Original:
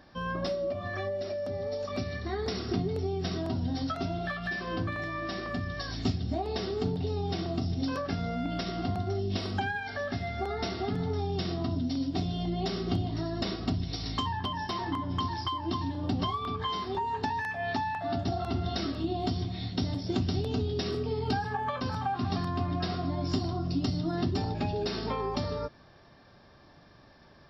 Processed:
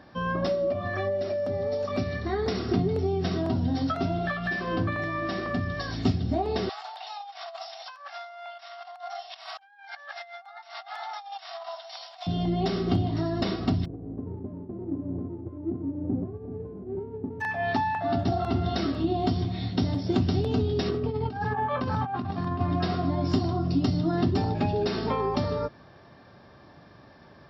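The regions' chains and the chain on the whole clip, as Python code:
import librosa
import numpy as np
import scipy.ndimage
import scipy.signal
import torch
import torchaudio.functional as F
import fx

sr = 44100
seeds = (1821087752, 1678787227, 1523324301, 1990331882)

y = fx.chain(x, sr, fx.steep_highpass(hz=670.0, slope=72),
    fx.over_compress(threshold_db=-44.0, ratio=-0.5), at=(6.69, 12.27))
y = fx.envelope_flatten(y, sr, power=0.3, at=(13.84, 17.4), fade=0.02)
y = fx.cheby2_lowpass(y, sr, hz=2600.0, order=4, stop_db=80, at=(13.84, 17.4), fade=0.02)
y = fx.running_max(y, sr, window=5, at=(13.84, 17.4), fade=0.02)
y = fx.chain(y, sr, fx.lowpass(hz=2900.0, slope=6),
    fx.over_compress(threshold_db=-33.0, ratio=-0.5), at=(20.89, 22.61))
y = scipy.signal.sosfilt(scipy.signal.butter(2, 72.0, 'highpass', fs=sr, output='sos'), y)
y = fx.high_shelf(y, sr, hz=3900.0, db=-9.5)
y = F.gain(torch.from_numpy(y), 5.5).numpy()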